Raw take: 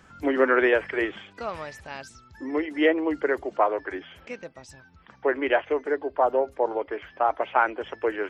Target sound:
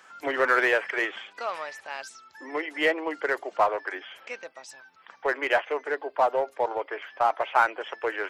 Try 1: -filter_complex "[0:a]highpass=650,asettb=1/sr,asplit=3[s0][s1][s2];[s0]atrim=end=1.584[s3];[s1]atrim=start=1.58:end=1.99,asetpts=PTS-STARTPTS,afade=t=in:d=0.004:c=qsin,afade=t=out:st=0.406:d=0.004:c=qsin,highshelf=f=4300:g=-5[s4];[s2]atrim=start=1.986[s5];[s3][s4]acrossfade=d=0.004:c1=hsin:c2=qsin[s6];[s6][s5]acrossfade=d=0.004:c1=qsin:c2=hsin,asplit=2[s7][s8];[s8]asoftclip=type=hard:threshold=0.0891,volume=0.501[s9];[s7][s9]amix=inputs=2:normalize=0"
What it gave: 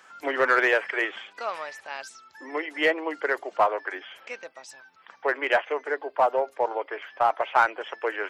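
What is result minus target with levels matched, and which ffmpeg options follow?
hard clipper: distortion -5 dB
-filter_complex "[0:a]highpass=650,asettb=1/sr,asplit=3[s0][s1][s2];[s0]atrim=end=1.584[s3];[s1]atrim=start=1.58:end=1.99,asetpts=PTS-STARTPTS,afade=t=in:d=0.004:c=qsin,afade=t=out:st=0.406:d=0.004:c=qsin,highshelf=f=4300:g=-5[s4];[s2]atrim=start=1.986[s5];[s3][s4]acrossfade=d=0.004:c1=hsin:c2=qsin[s6];[s6][s5]acrossfade=d=0.004:c1=qsin:c2=hsin,asplit=2[s7][s8];[s8]asoftclip=type=hard:threshold=0.0422,volume=0.501[s9];[s7][s9]amix=inputs=2:normalize=0"

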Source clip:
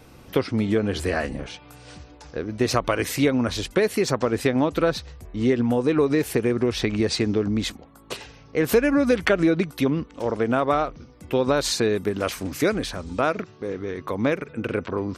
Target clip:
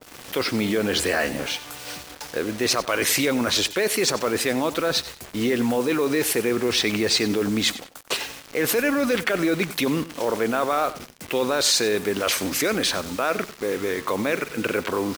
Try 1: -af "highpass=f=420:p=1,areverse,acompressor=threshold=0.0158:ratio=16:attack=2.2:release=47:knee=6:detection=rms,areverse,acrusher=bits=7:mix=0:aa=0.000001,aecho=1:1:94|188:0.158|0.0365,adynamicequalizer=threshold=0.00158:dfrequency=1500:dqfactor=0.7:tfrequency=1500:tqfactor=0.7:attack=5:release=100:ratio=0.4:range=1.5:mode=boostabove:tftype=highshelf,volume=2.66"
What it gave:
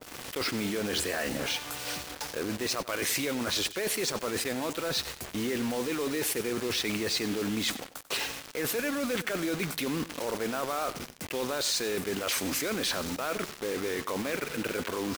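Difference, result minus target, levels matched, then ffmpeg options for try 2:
compression: peak gain reduction +10 dB
-af "highpass=f=420:p=1,areverse,acompressor=threshold=0.0531:ratio=16:attack=2.2:release=47:knee=6:detection=rms,areverse,acrusher=bits=7:mix=0:aa=0.000001,aecho=1:1:94|188:0.158|0.0365,adynamicequalizer=threshold=0.00158:dfrequency=1500:dqfactor=0.7:tfrequency=1500:tqfactor=0.7:attack=5:release=100:ratio=0.4:range=1.5:mode=boostabove:tftype=highshelf,volume=2.66"

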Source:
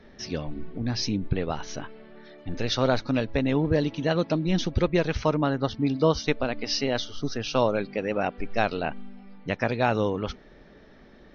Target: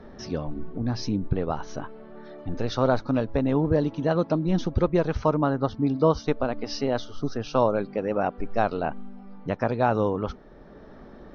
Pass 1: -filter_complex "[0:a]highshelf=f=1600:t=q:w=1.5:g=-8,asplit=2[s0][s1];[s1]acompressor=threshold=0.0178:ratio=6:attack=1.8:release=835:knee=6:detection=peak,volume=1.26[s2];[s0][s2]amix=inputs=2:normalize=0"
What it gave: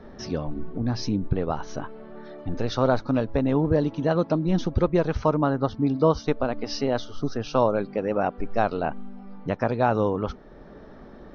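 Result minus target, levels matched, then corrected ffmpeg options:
compression: peak gain reduction -6.5 dB
-filter_complex "[0:a]highshelf=f=1600:t=q:w=1.5:g=-8,asplit=2[s0][s1];[s1]acompressor=threshold=0.00708:ratio=6:attack=1.8:release=835:knee=6:detection=peak,volume=1.26[s2];[s0][s2]amix=inputs=2:normalize=0"

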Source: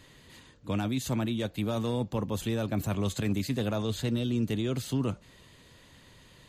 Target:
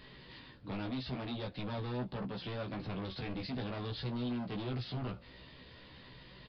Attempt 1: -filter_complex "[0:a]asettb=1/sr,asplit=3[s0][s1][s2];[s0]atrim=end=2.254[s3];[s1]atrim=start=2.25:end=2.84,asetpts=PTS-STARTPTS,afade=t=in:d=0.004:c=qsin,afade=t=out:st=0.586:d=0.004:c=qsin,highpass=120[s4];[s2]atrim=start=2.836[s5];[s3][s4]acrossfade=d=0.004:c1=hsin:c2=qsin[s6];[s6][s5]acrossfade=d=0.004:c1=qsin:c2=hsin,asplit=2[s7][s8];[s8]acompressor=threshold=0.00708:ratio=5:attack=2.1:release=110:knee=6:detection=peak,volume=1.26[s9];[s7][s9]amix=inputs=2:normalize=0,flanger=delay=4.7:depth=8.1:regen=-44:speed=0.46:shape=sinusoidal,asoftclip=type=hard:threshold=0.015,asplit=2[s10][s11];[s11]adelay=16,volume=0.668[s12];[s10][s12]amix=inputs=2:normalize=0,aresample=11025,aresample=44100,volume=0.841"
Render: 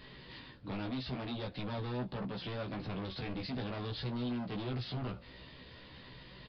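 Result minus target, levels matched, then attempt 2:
compression: peak gain reduction -8.5 dB
-filter_complex "[0:a]asettb=1/sr,asplit=3[s0][s1][s2];[s0]atrim=end=2.254[s3];[s1]atrim=start=2.25:end=2.84,asetpts=PTS-STARTPTS,afade=t=in:d=0.004:c=qsin,afade=t=out:st=0.586:d=0.004:c=qsin,highpass=120[s4];[s2]atrim=start=2.836[s5];[s3][s4]acrossfade=d=0.004:c1=hsin:c2=qsin[s6];[s6][s5]acrossfade=d=0.004:c1=qsin:c2=hsin,asplit=2[s7][s8];[s8]acompressor=threshold=0.00211:ratio=5:attack=2.1:release=110:knee=6:detection=peak,volume=1.26[s9];[s7][s9]amix=inputs=2:normalize=0,flanger=delay=4.7:depth=8.1:regen=-44:speed=0.46:shape=sinusoidal,asoftclip=type=hard:threshold=0.015,asplit=2[s10][s11];[s11]adelay=16,volume=0.668[s12];[s10][s12]amix=inputs=2:normalize=0,aresample=11025,aresample=44100,volume=0.841"

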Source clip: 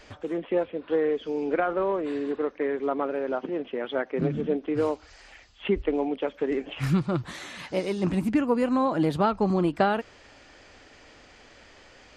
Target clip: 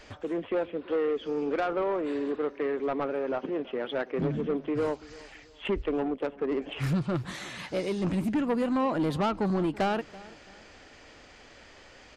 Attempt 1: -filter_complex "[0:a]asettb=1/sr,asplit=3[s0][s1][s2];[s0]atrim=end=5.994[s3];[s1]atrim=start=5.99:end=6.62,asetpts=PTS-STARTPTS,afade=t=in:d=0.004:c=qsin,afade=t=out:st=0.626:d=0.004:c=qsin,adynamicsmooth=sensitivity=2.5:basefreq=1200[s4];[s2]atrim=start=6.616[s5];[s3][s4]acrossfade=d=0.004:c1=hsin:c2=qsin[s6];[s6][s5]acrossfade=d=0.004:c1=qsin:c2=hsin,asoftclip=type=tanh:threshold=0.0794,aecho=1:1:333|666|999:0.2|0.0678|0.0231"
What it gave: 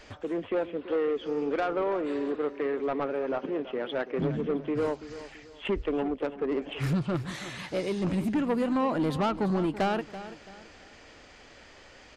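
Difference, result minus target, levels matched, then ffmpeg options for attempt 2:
echo-to-direct +6.5 dB
-filter_complex "[0:a]asettb=1/sr,asplit=3[s0][s1][s2];[s0]atrim=end=5.994[s3];[s1]atrim=start=5.99:end=6.62,asetpts=PTS-STARTPTS,afade=t=in:d=0.004:c=qsin,afade=t=out:st=0.626:d=0.004:c=qsin,adynamicsmooth=sensitivity=2.5:basefreq=1200[s4];[s2]atrim=start=6.616[s5];[s3][s4]acrossfade=d=0.004:c1=hsin:c2=qsin[s6];[s6][s5]acrossfade=d=0.004:c1=qsin:c2=hsin,asoftclip=type=tanh:threshold=0.0794,aecho=1:1:333|666|999:0.0944|0.0321|0.0109"

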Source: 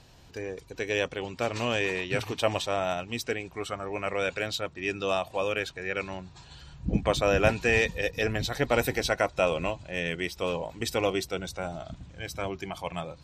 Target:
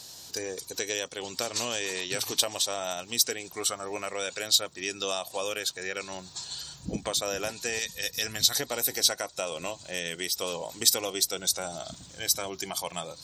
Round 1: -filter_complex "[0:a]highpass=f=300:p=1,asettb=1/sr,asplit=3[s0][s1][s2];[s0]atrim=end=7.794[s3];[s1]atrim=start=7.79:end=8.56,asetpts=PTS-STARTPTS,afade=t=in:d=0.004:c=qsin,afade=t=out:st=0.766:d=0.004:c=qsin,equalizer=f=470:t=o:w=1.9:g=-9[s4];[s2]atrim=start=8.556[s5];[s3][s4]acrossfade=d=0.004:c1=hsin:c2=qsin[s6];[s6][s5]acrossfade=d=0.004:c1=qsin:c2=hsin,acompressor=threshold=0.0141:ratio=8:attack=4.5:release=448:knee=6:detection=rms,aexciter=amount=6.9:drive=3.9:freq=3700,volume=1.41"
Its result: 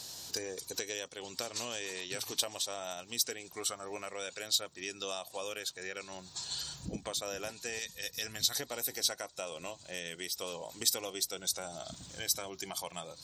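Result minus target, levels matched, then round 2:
compression: peak gain reduction +8 dB
-filter_complex "[0:a]highpass=f=300:p=1,asettb=1/sr,asplit=3[s0][s1][s2];[s0]atrim=end=7.794[s3];[s1]atrim=start=7.79:end=8.56,asetpts=PTS-STARTPTS,afade=t=in:d=0.004:c=qsin,afade=t=out:st=0.766:d=0.004:c=qsin,equalizer=f=470:t=o:w=1.9:g=-9[s4];[s2]atrim=start=8.556[s5];[s3][s4]acrossfade=d=0.004:c1=hsin:c2=qsin[s6];[s6][s5]acrossfade=d=0.004:c1=qsin:c2=hsin,acompressor=threshold=0.0398:ratio=8:attack=4.5:release=448:knee=6:detection=rms,aexciter=amount=6.9:drive=3.9:freq=3700,volume=1.41"

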